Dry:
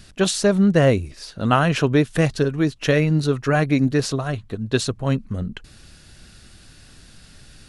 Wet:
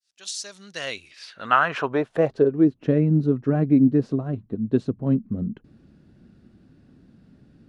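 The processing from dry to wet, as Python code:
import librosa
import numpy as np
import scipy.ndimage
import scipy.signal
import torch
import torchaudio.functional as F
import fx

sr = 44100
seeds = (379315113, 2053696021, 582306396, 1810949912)

y = fx.fade_in_head(x, sr, length_s=0.87)
y = fx.filter_sweep_bandpass(y, sr, from_hz=5700.0, to_hz=240.0, start_s=0.63, end_s=2.82, q=1.6)
y = y * librosa.db_to_amplitude(4.0)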